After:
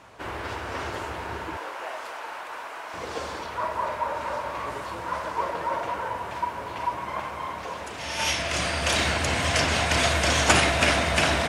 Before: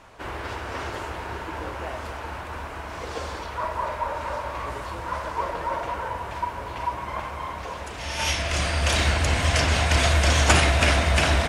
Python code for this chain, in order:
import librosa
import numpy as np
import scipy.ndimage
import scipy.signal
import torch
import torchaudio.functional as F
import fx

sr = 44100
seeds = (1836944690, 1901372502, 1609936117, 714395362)

y = fx.highpass(x, sr, hz=fx.steps((0.0, 73.0), (1.57, 550.0), (2.94, 120.0)), slope=12)